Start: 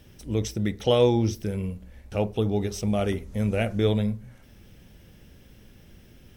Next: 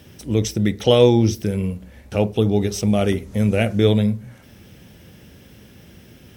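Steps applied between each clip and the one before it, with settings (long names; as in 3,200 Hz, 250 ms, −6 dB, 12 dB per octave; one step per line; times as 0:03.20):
high-pass filter 83 Hz
dynamic equaliser 990 Hz, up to −4 dB, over −39 dBFS, Q 0.78
level +8 dB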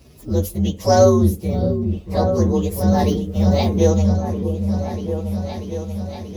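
partials spread apart or drawn together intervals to 122%
echo whose low-pass opens from repeat to repeat 636 ms, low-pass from 400 Hz, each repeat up 2 octaves, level −6 dB
level +1.5 dB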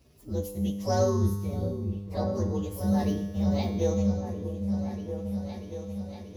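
tuned comb filter 100 Hz, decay 1.5 s, harmonics all, mix 80%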